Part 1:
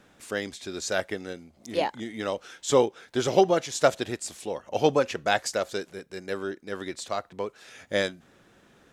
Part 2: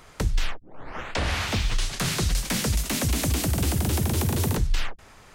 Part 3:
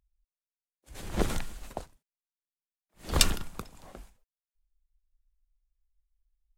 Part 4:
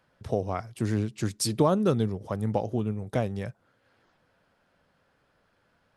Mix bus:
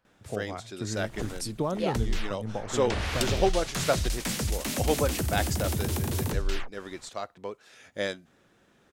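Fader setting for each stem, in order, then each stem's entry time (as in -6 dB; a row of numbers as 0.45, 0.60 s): -5.0, -5.0, -9.5, -7.0 dB; 0.05, 1.75, 0.00, 0.00 s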